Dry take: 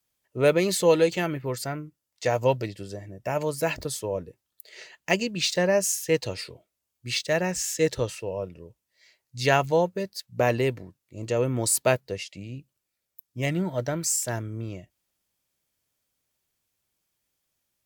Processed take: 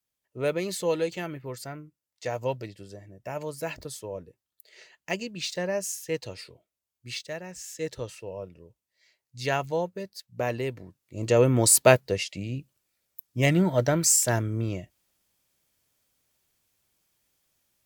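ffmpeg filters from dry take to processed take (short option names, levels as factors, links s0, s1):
-af "volume=4.22,afade=t=out:st=7.12:d=0.3:silence=0.421697,afade=t=in:st=7.42:d=0.88:silence=0.375837,afade=t=in:st=10.71:d=0.64:silence=0.281838"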